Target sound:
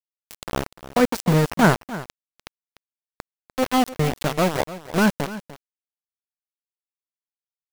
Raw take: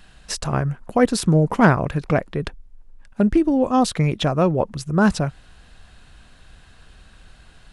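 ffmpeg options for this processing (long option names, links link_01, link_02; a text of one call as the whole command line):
ffmpeg -i in.wav -filter_complex "[0:a]asplit=3[link_01][link_02][link_03];[link_01]afade=type=out:start_time=1.77:duration=0.02[link_04];[link_02]acompressor=threshold=-26dB:ratio=16,afade=type=in:start_time=1.77:duration=0.02,afade=type=out:start_time=3.57:duration=0.02[link_05];[link_03]afade=type=in:start_time=3.57:duration=0.02[link_06];[link_04][link_05][link_06]amix=inputs=3:normalize=0,aeval=exprs='val(0)*gte(abs(val(0)),0.15)':channel_layout=same,aecho=1:1:297:0.168,volume=-1.5dB" out.wav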